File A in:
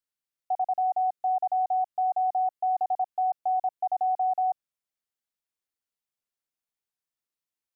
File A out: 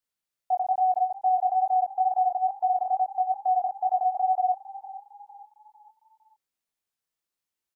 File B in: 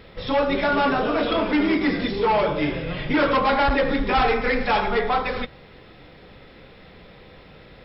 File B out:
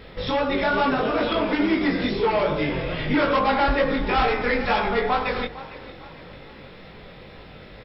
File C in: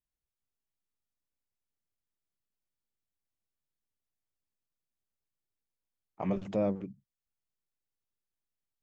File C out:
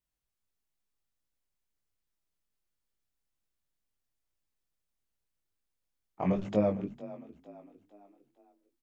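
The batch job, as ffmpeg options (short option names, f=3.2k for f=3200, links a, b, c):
-filter_complex "[0:a]acompressor=threshold=-25dB:ratio=2,flanger=delay=18.5:depth=3.6:speed=2.3,asplit=5[a][b][c][d][e];[b]adelay=455,afreqshift=33,volume=-17dB[f];[c]adelay=910,afreqshift=66,volume=-24.1dB[g];[d]adelay=1365,afreqshift=99,volume=-31.3dB[h];[e]adelay=1820,afreqshift=132,volume=-38.4dB[i];[a][f][g][h][i]amix=inputs=5:normalize=0,volume=6dB"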